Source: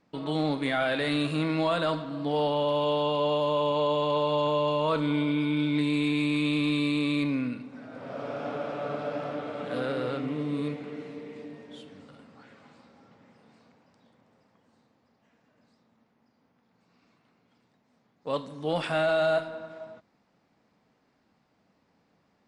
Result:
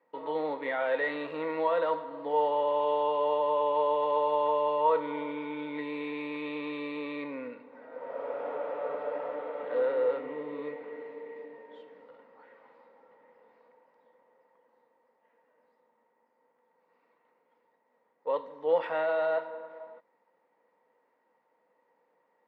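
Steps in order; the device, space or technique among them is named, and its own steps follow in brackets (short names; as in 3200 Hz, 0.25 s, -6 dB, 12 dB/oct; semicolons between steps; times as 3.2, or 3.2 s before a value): tin-can telephone (BPF 430–2100 Hz; small resonant body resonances 500/920/1900 Hz, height 15 dB, ringing for 50 ms); gain -5 dB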